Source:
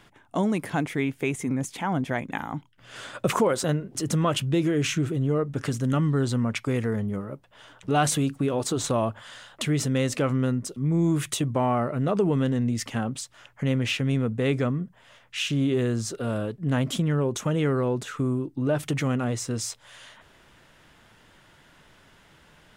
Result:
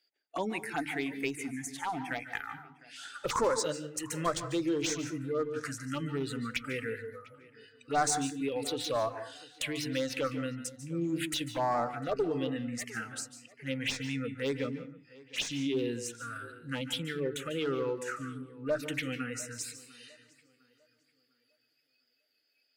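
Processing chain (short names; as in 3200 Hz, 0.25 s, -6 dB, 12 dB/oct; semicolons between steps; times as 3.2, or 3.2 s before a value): weighting filter A; spectral noise reduction 24 dB; added harmonics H 6 -32 dB, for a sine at -9.5 dBFS; one-sided clip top -25.5 dBFS; envelope phaser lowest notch 170 Hz, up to 2900 Hz, full sweep at -25.5 dBFS; notches 50/100/150/200/250/300 Hz; tape echo 0.702 s, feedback 38%, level -21 dB, low-pass 3700 Hz; reverb RT60 0.35 s, pre-delay 0.141 s, DRR 10.5 dB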